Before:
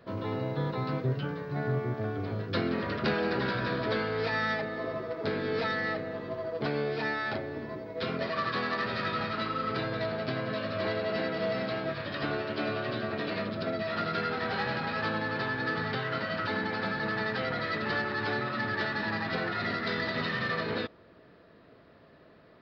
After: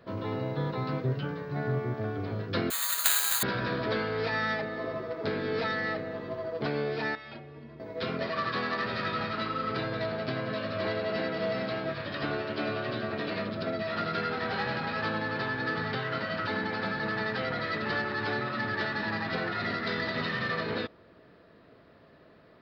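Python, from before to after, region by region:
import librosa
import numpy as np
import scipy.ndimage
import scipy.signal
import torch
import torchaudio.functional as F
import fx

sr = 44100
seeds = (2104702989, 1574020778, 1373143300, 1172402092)

y = fx.chain(x, sr, fx.highpass(hz=980.0, slope=24),
    fx.resample_bad(factor=8, down='none', up='zero_stuff'), at=(2.7, 3.43))
y = fx.chain(y, sr, fx.lowpass(hz=5300.0, slope=12),
    fx.peak_eq(hz=2600.0, db=6.0, octaves=0.39),
    fx.stiff_resonator(f0_hz=69.0, decay_s=0.35, stiffness=0.03), at=(7.15, 7.8))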